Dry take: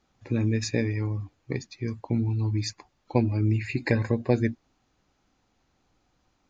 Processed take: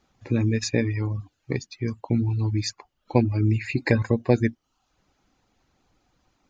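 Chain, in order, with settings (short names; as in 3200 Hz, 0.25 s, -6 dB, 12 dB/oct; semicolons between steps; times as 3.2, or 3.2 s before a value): reverb removal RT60 0.53 s; gain +3.5 dB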